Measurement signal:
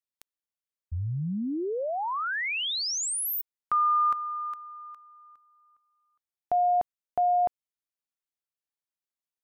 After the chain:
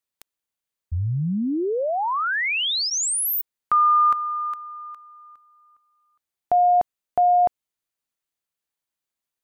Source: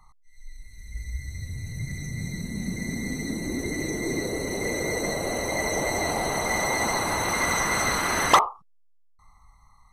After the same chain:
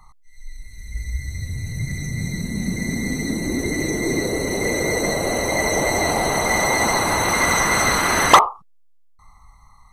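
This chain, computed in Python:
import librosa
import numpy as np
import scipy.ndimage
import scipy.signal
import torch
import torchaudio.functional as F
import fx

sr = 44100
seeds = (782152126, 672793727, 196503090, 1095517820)

y = fx.notch(x, sr, hz=5400.0, q=17.0)
y = y * librosa.db_to_amplitude(6.5)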